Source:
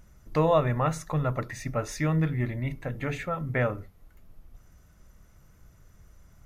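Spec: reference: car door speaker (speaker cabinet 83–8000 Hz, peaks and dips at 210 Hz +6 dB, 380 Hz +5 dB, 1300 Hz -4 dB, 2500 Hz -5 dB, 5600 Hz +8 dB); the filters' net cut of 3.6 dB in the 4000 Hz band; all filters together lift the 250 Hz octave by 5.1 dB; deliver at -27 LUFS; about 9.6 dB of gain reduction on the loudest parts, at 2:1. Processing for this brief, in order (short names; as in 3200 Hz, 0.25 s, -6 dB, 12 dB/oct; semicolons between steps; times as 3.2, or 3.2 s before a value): bell 250 Hz +5 dB; bell 4000 Hz -7.5 dB; compressor 2:1, threshold -35 dBFS; speaker cabinet 83–8000 Hz, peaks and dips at 210 Hz +6 dB, 380 Hz +5 dB, 1300 Hz -4 dB, 2500 Hz -5 dB, 5600 Hz +8 dB; gain +7 dB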